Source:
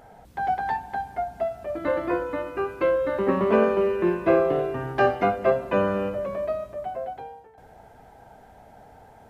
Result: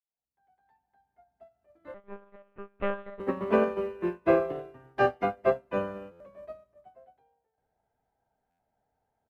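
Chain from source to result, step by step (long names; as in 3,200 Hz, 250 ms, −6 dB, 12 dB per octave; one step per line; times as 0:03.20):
fade in at the beginning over 2.81 s
on a send: repeating echo 149 ms, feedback 57%, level −22.5 dB
0:01.94–0:03.20: on the sum: one-pitch LPC vocoder at 8 kHz 200 Hz
buffer that repeats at 0:06.11/0:08.50, samples 512, times 7
expander for the loud parts 2.5 to 1, over −35 dBFS
level −1.5 dB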